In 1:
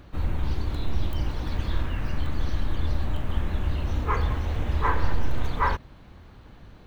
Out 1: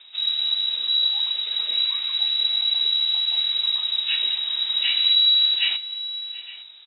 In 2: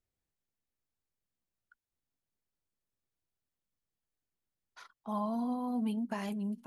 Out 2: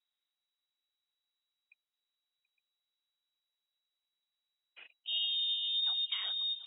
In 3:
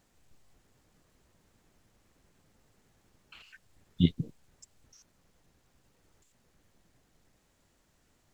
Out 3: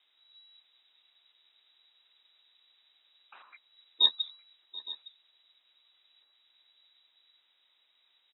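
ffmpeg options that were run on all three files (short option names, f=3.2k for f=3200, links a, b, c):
-af "lowpass=f=3.3k:t=q:w=0.5098,lowpass=f=3.3k:t=q:w=0.6013,lowpass=f=3.3k:t=q:w=0.9,lowpass=f=3.3k:t=q:w=2.563,afreqshift=-3900,highpass=f=250:w=0.5412,highpass=f=250:w=1.3066,aecho=1:1:731|862:0.1|0.133"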